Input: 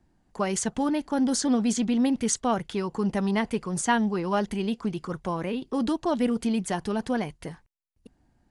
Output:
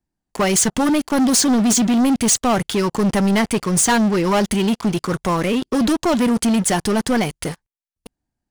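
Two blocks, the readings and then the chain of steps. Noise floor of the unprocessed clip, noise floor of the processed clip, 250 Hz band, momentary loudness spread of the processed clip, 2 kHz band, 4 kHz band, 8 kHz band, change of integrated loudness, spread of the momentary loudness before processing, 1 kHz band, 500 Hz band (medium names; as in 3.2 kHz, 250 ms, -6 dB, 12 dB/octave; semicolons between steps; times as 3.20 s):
-68 dBFS, -83 dBFS, +8.5 dB, 6 LU, +9.5 dB, +12.5 dB, +13.5 dB, +9.5 dB, 7 LU, +8.0 dB, +8.5 dB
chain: treble shelf 4.1 kHz +10 dB; waveshaping leveller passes 5; trim -6 dB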